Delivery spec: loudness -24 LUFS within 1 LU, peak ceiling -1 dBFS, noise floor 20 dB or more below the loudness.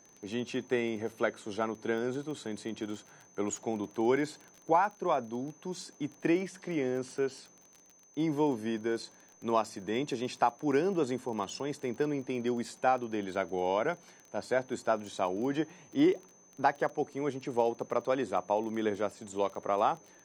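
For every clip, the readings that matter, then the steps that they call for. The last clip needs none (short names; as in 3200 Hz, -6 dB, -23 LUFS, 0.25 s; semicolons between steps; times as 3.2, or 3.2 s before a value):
ticks 21/s; steady tone 6200 Hz; tone level -59 dBFS; loudness -32.5 LUFS; peak -12.5 dBFS; loudness target -24.0 LUFS
-> de-click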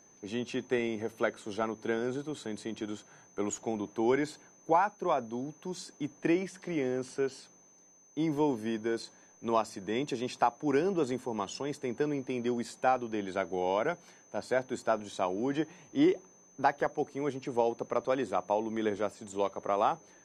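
ticks 0/s; steady tone 6200 Hz; tone level -59 dBFS
-> notch 6200 Hz, Q 30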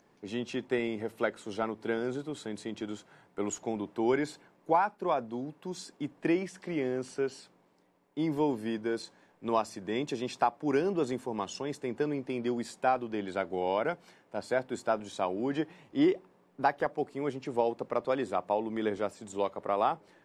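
steady tone none; loudness -32.5 LUFS; peak -12.5 dBFS; loudness target -24.0 LUFS
-> gain +8.5 dB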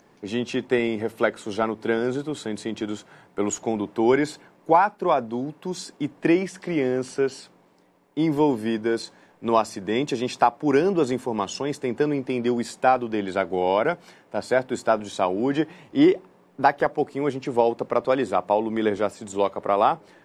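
loudness -24.0 LUFS; peak -4.0 dBFS; noise floor -57 dBFS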